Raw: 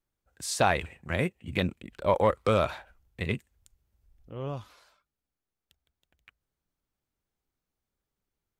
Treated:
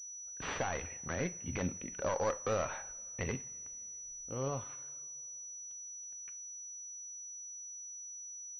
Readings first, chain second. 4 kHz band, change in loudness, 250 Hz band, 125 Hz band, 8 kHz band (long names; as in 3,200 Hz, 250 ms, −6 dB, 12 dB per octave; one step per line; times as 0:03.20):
−12.0 dB, −10.5 dB, −8.0 dB, −8.5 dB, can't be measured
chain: stylus tracing distortion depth 0.38 ms
noise gate −53 dBFS, range −7 dB
low-shelf EQ 370 Hz −5 dB
downward compressor 1.5 to 1, threshold −44 dBFS, peak gain reduction 9 dB
brickwall limiter −28 dBFS, peak gain reduction 9.5 dB
coupled-rooms reverb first 0.37 s, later 2.9 s, from −22 dB, DRR 10.5 dB
switching amplifier with a slow clock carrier 5,900 Hz
level +4 dB